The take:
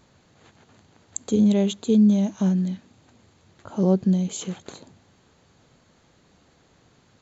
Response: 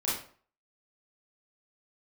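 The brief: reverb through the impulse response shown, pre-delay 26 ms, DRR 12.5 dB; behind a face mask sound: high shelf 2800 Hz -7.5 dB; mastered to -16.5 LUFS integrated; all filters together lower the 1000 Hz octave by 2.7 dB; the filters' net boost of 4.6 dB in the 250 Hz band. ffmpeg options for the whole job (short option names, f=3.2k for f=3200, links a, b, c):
-filter_complex "[0:a]equalizer=f=250:t=o:g=6.5,equalizer=f=1k:t=o:g=-3.5,asplit=2[a][b];[1:a]atrim=start_sample=2205,adelay=26[c];[b][c]afir=irnorm=-1:irlink=0,volume=-20dB[d];[a][d]amix=inputs=2:normalize=0,highshelf=f=2.8k:g=-7.5,volume=1dB"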